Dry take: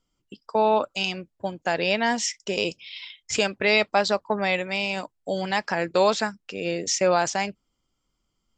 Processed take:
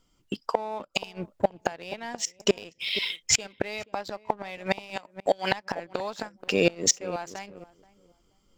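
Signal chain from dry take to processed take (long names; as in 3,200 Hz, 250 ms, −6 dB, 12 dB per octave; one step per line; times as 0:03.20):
gate with flip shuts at −16 dBFS, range −26 dB
0:04.96–0:05.52: meter weighting curve A
on a send: feedback echo with a low-pass in the loop 479 ms, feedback 27%, low-pass 930 Hz, level −15 dB
on the sum: dynamic equaliser 830 Hz, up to +4 dB, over −50 dBFS, Q 1.8
in parallel at −0.5 dB: downward compressor, threshold −46 dBFS, peak gain reduction 21 dB
on the sum: leveller curve on the samples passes 1
level +4 dB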